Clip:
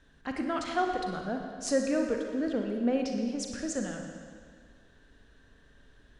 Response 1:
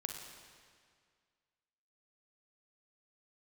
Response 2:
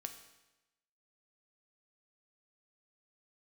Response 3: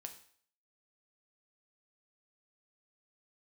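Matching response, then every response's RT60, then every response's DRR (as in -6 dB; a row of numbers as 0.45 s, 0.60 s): 1; 2.0 s, 1.0 s, 0.55 s; 2.5 dB, 6.0 dB, 5.0 dB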